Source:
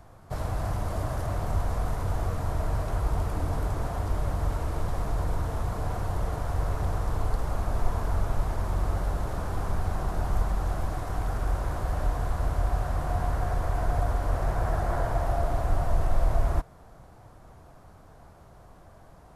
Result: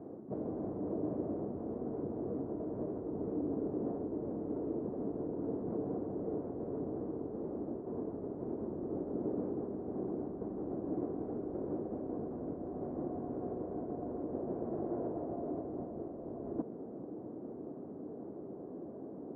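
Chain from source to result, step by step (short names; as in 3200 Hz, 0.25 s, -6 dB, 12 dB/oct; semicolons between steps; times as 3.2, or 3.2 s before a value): reverse; compressor 6:1, threshold -37 dBFS, peak gain reduction 19 dB; reverse; harmoniser +7 st -10 dB; Butterworth band-pass 320 Hz, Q 1.6; gain +17.5 dB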